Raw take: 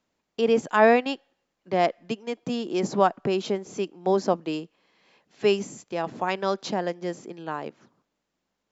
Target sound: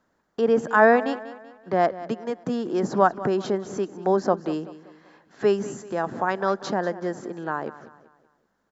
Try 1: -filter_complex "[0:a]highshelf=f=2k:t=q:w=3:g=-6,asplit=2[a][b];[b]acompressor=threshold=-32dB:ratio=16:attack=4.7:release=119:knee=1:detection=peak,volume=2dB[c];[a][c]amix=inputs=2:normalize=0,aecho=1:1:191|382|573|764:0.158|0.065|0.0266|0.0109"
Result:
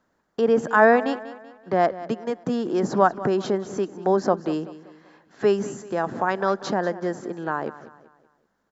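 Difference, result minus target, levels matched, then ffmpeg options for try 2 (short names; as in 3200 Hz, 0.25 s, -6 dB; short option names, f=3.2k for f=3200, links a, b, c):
compressor: peak gain reduction -6.5 dB
-filter_complex "[0:a]highshelf=f=2k:t=q:w=3:g=-6,asplit=2[a][b];[b]acompressor=threshold=-39dB:ratio=16:attack=4.7:release=119:knee=1:detection=peak,volume=2dB[c];[a][c]amix=inputs=2:normalize=0,aecho=1:1:191|382|573|764:0.158|0.065|0.0266|0.0109"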